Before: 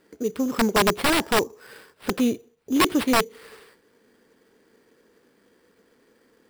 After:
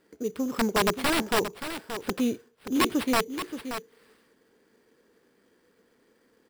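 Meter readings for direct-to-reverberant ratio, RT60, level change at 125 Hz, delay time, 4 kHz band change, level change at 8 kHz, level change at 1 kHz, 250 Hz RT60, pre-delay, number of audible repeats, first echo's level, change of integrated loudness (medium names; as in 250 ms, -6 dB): no reverb, no reverb, -4.0 dB, 577 ms, -4.0 dB, -4.0 dB, -4.0 dB, no reverb, no reverb, 1, -10.0 dB, -5.0 dB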